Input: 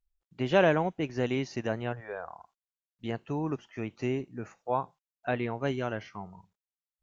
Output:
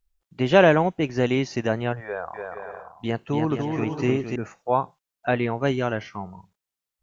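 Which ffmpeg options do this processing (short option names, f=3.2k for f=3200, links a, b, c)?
-filter_complex "[0:a]asettb=1/sr,asplit=3[a][b][c];[a]atrim=end=2.054[d];[b]atrim=start=2.05:end=4.36,asetpts=PTS-STARTPTS,afade=t=in:d=0.004:c=qsin,afade=t=out:st=2.306:d=0.004:c=qsin,aecho=1:1:290|464|568.4|631|668.6:0.631|0.398|0.251|0.158|0.1,atrim=end_sample=101871[e];[c]atrim=start=4.356[f];[d][e]acrossfade=d=0.004:c1=hsin:c2=qsin[g];[g][f]acrossfade=d=0.004:c1=qsin:c2=hsin,volume=7.5dB"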